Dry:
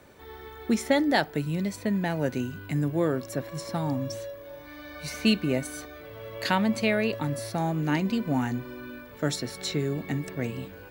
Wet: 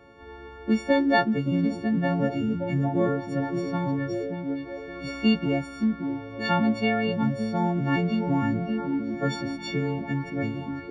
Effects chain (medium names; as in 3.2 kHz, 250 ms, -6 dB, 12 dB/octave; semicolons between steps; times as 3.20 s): partials quantised in pitch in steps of 4 st; tape spacing loss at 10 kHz 38 dB; repeats whose band climbs or falls 571 ms, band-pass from 250 Hz, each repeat 0.7 oct, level -2.5 dB; trim +3 dB